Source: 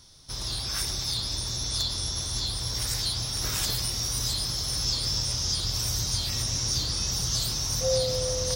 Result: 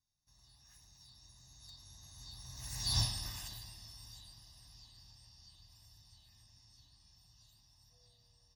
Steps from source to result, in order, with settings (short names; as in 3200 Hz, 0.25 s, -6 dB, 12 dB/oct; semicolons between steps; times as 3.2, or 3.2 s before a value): Doppler pass-by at 2.99, 22 m/s, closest 1.2 m; comb 1.1 ms, depth 82%; gain -2.5 dB